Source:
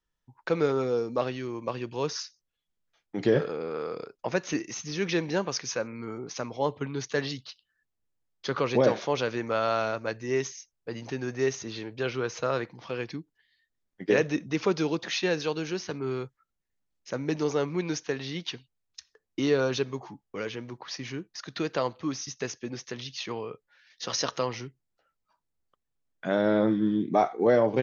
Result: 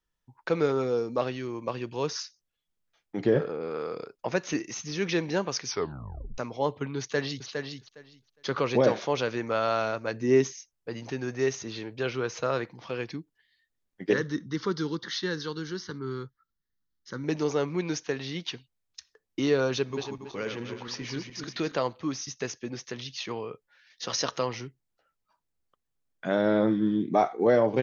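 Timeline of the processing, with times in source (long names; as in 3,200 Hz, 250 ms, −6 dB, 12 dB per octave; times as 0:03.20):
0:03.21–0:03.63: high-shelf EQ 2,700 Hz −9.5 dB
0:05.66: tape stop 0.72 s
0:06.99–0:07.47: delay throw 410 ms, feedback 15%, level −5.5 dB
0:10.13–0:10.55: parametric band 240 Hz +10 dB 1.9 octaves
0:14.13–0:17.24: phaser with its sweep stopped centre 2,500 Hz, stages 6
0:19.76–0:21.75: feedback delay that plays each chunk backwards 140 ms, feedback 54%, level −5.5 dB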